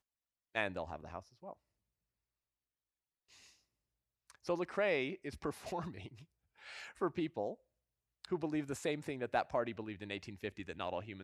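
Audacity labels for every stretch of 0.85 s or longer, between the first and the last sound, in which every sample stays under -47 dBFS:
1.530000	4.300000	silence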